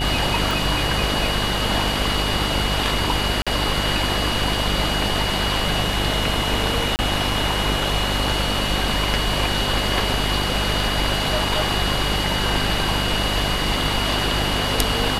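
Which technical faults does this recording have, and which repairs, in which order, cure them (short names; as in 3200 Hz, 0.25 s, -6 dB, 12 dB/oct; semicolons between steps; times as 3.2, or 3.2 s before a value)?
buzz 50 Hz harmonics 15 -26 dBFS
tone 2900 Hz -27 dBFS
0.51 pop
3.42–3.47 gap 46 ms
6.96–6.99 gap 29 ms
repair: de-click; notch 2900 Hz, Q 30; de-hum 50 Hz, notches 15; interpolate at 3.42, 46 ms; interpolate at 6.96, 29 ms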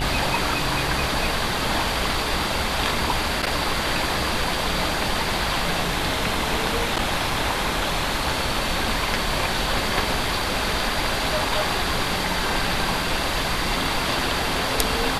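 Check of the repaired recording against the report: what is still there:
0.51 pop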